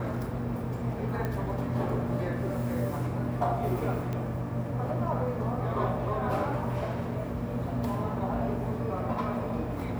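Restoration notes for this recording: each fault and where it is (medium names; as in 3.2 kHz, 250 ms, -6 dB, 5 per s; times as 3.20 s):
1.25 s: pop -20 dBFS
4.13 s: pop -22 dBFS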